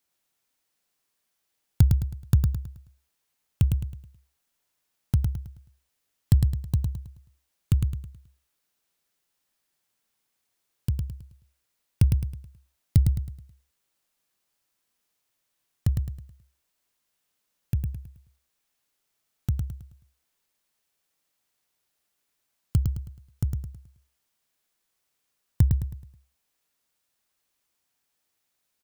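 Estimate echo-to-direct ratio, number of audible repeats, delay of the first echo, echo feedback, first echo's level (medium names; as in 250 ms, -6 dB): -4.5 dB, 4, 107 ms, 37%, -5.0 dB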